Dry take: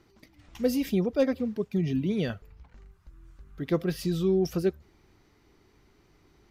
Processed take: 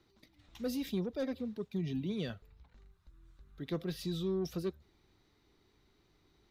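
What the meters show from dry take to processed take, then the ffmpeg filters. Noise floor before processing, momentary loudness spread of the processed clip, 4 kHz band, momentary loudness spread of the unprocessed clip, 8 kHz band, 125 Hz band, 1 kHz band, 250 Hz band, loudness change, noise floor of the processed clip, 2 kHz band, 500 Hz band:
−63 dBFS, 6 LU, −4.5 dB, 5 LU, −8.0 dB, −9.0 dB, −9.5 dB, −9.5 dB, −9.5 dB, −71 dBFS, −9.5 dB, −11.0 dB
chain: -filter_complex "[0:a]equalizer=frequency=3800:width=4.1:gain=10,acrossover=split=240|4900[link_01][link_02][link_03];[link_02]asoftclip=type=tanh:threshold=-23dB[link_04];[link_01][link_04][link_03]amix=inputs=3:normalize=0,volume=-8.5dB"

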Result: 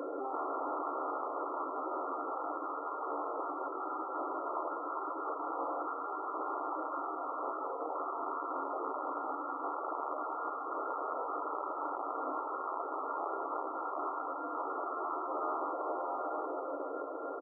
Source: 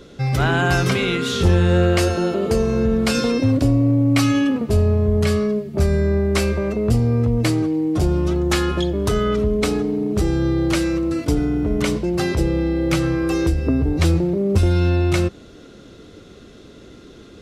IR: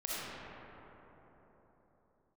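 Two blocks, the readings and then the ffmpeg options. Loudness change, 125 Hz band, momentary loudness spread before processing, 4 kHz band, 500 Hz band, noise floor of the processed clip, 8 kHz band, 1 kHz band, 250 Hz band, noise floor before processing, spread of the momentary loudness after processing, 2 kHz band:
−18.5 dB, below −40 dB, 4 LU, below −40 dB, −17.5 dB, −40 dBFS, below −40 dB, −3.0 dB, −27.0 dB, −43 dBFS, 2 LU, below −25 dB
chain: -filter_complex "[0:a]aeval=exprs='(mod(5.62*val(0)+1,2)-1)/5.62':channel_layout=same,asplit=2[link_01][link_02];[link_02]adelay=1178,lowpass=frequency=1100:poles=1,volume=-21dB,asplit=2[link_03][link_04];[link_04]adelay=1178,lowpass=frequency=1100:poles=1,volume=0.26[link_05];[link_03][link_05]amix=inputs=2:normalize=0[link_06];[link_01][link_06]amix=inputs=2:normalize=0,alimiter=limit=-21.5dB:level=0:latency=1,bandreject=frequency=50:width_type=h:width=6,bandreject=frequency=100:width_type=h:width=6,bandreject=frequency=150:width_type=h:width=6,bandreject=frequency=200:width_type=h:width=6,bandreject=frequency=250:width_type=h:width=6,bandreject=frequency=300:width_type=h:width=6,bandreject=frequency=350:width_type=h:width=6,asplit=2[link_07][link_08];[link_08]aecho=0:1:444:0.376[link_09];[link_07][link_09]amix=inputs=2:normalize=0,acompressor=threshold=-36dB:ratio=3,afftfilt=real='re*lt(hypot(re,im),0.0316)':imag='im*lt(hypot(re,im),0.0316)':win_size=1024:overlap=0.75,aeval=exprs='0.0596*sin(PI/2*2.51*val(0)/0.0596)':channel_layout=same,afftfilt=real='re*between(b*sr/4096,260,1400)':imag='im*between(b*sr/4096,260,1400)':win_size=4096:overlap=0.75,asplit=2[link_10][link_11];[link_11]adelay=13,volume=-11dB[link_12];[link_10][link_12]amix=inputs=2:normalize=0"

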